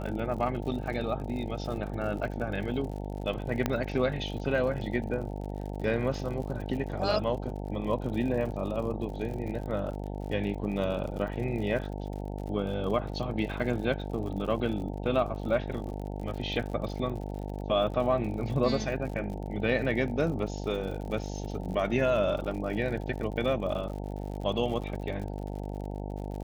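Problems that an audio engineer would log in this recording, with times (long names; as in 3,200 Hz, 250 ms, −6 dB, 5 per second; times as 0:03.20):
mains buzz 50 Hz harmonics 18 −36 dBFS
surface crackle 66 per second −38 dBFS
0:03.66: click −13 dBFS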